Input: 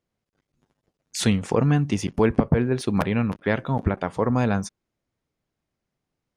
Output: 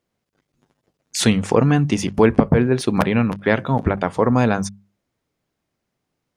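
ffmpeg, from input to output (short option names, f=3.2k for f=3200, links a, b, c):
-af "lowshelf=f=62:g=-8,bandreject=f=50:t=h:w=6,bandreject=f=100:t=h:w=6,bandreject=f=150:t=h:w=6,bandreject=f=200:t=h:w=6,volume=6dB"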